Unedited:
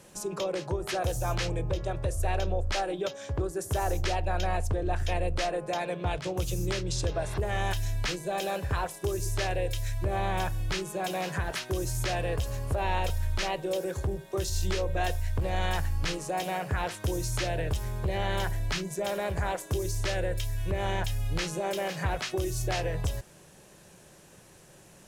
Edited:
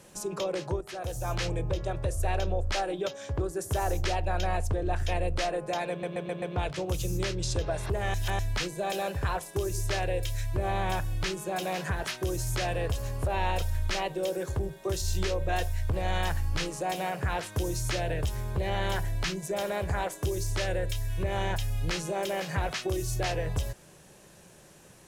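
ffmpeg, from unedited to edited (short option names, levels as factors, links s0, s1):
-filter_complex "[0:a]asplit=8[s0][s1][s2][s3][s4][s5][s6][s7];[s0]atrim=end=0.81,asetpts=PTS-STARTPTS,afade=t=out:st=0.806:d=0.004:c=hsin:silence=0.237137[s8];[s1]atrim=start=0.81:end=6.032,asetpts=PTS-STARTPTS,afade=t=in:d=0.66:silence=0.237137[s9];[s2]atrim=start=5.898:end=6.032[s10];[s3]atrim=start=5.898:end=6.032[s11];[s4]atrim=start=5.898:end=6.032[s12];[s5]atrim=start=5.898:end=7.622[s13];[s6]atrim=start=7.618:end=7.872,asetpts=PTS-STARTPTS,areverse[s14];[s7]atrim=start=7.868[s15];[s8][s9]concat=n=2:v=0:a=1[s16];[s16][s10]acrossfade=d=0.004:c1=hsin:c2=hsin[s17];[s17][s11]acrossfade=d=0.004:c1=hsin:c2=hsin[s18];[s18][s12]acrossfade=d=0.004:c1=hsin:c2=hsin[s19];[s19][s13]acrossfade=d=0.004:c1=hsin:c2=hsin[s20];[s20][s14]acrossfade=d=0.004:c1=hsin:c2=hsin[s21];[s21][s15]acrossfade=d=0.004:c1=hsin:c2=hsin"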